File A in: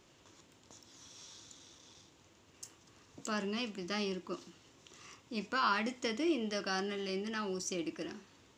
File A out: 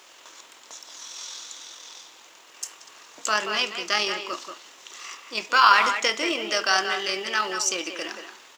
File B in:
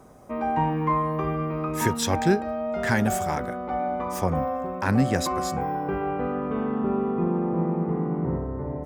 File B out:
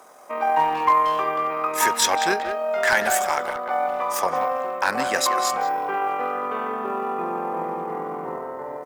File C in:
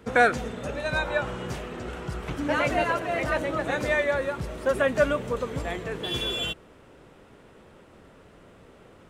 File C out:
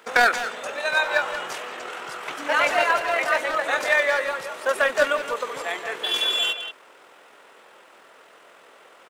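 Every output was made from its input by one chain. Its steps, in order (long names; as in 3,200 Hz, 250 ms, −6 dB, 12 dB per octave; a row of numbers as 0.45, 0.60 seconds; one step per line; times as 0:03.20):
high-pass filter 760 Hz 12 dB per octave
hard clipping −19 dBFS
amplitude modulation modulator 42 Hz, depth 20%
log-companded quantiser 8 bits
far-end echo of a speakerphone 180 ms, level −7 dB
loudness normalisation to −23 LKFS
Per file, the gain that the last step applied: +17.5, +10.0, +8.5 decibels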